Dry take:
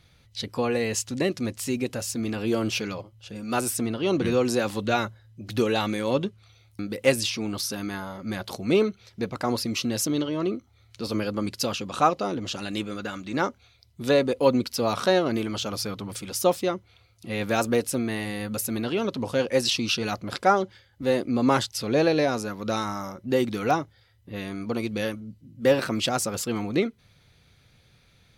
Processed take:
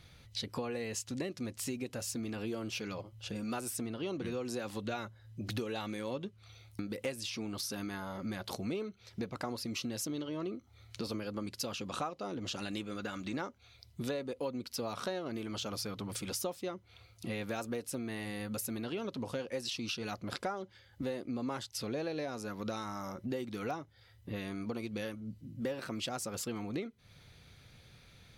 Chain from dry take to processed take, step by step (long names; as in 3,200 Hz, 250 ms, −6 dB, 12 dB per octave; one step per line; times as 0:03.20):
downward compressor 6 to 1, threshold −37 dBFS, peak gain reduction 21 dB
level +1 dB